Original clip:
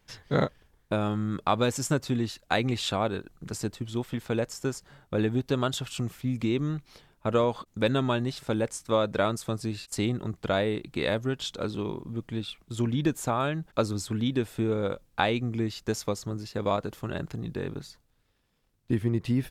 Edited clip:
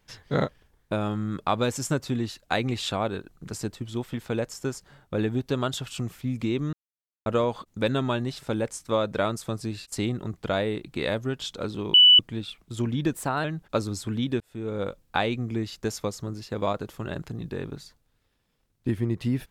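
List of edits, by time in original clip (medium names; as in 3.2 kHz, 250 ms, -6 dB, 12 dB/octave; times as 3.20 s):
6.73–7.26 s: mute
11.94–12.19 s: bleep 2.97 kHz -10.5 dBFS
13.13–13.48 s: speed 112%
14.44–14.89 s: fade in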